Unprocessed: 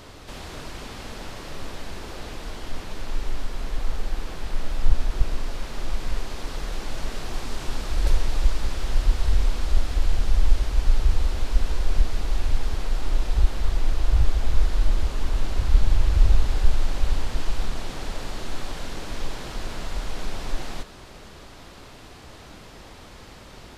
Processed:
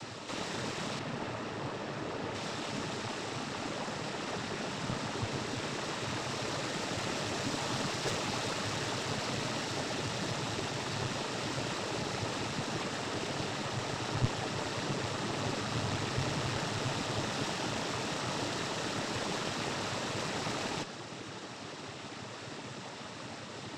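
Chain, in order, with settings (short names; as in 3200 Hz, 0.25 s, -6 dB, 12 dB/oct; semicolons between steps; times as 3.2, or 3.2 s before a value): noise vocoder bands 12; added harmonics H 2 -6 dB, 4 -20 dB, 6 -22 dB, 8 -38 dB, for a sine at -20 dBFS; in parallel at -7.5 dB: soft clip -34 dBFS, distortion -12 dB; 0.99–2.35 on the sum: high shelf 3200 Hz -11 dB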